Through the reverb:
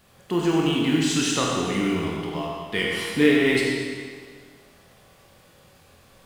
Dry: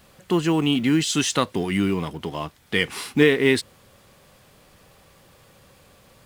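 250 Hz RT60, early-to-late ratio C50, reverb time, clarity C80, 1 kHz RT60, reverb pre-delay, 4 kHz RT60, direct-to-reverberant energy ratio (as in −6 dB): 1.8 s, −1.0 dB, 1.8 s, 0.5 dB, 1.8 s, 24 ms, 1.7 s, −3.0 dB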